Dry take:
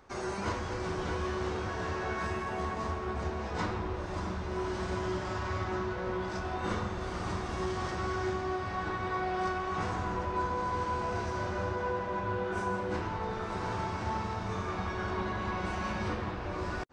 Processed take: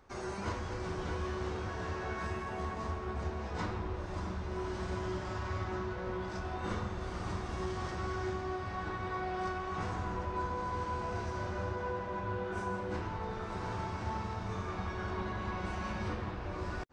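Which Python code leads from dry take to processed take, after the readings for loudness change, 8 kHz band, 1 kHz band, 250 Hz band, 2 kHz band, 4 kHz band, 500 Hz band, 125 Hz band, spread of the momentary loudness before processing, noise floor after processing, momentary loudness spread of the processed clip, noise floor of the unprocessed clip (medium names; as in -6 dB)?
-3.5 dB, -4.5 dB, -4.5 dB, -3.5 dB, -4.5 dB, -4.5 dB, -4.0 dB, -1.5 dB, 3 LU, -41 dBFS, 2 LU, -37 dBFS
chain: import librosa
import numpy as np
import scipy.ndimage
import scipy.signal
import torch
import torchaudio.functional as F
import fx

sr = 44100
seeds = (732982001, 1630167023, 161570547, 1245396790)

y = fx.low_shelf(x, sr, hz=120.0, db=5.0)
y = y * 10.0 ** (-4.5 / 20.0)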